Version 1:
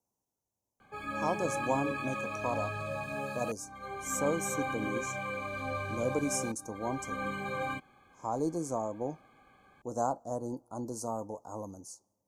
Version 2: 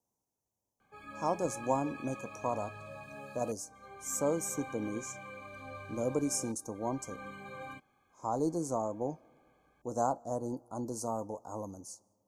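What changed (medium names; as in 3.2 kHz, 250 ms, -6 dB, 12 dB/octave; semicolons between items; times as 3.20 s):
speech: send +6.5 dB; background -10.0 dB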